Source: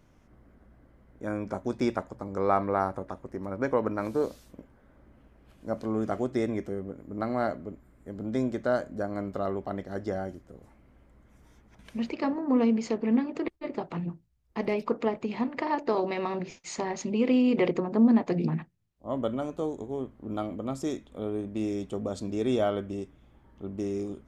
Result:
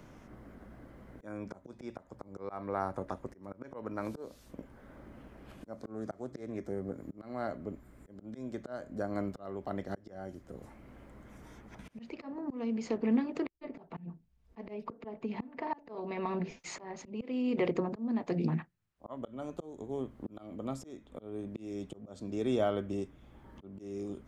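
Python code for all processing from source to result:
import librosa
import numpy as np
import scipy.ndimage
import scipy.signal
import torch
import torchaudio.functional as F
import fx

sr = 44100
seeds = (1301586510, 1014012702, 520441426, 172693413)

y = fx.chain(x, sr, fx.highpass(hz=41.0, slope=24),
    fx.peak_eq(hz=2800.0, db=-11.5, octaves=0.4),
    fx.doppler_dist(depth_ms=0.16), at=(5.76, 7.03))
y = fx.chain(y, sr, fx.lowpass(hz=2200.0, slope=6),
    fx.notch(hz=1300.0, q=24.0),
    fx.comb(ms=4.5, depth=0.4), at=(13.65, 16.59))
y = fx.chain(y, sr, fx.peak_eq(hz=1400.0, db=9.5, octaves=1.9),
    fx.upward_expand(threshold_db=-38.0, expansion=1.5), at=(18.6, 19.17))
y = fx.auto_swell(y, sr, attack_ms=553.0)
y = fx.band_squash(y, sr, depth_pct=40)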